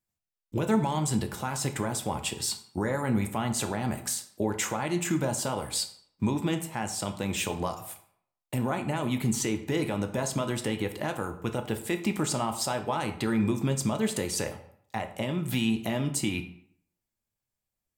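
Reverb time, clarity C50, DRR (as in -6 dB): 0.65 s, 11.0 dB, 6.0 dB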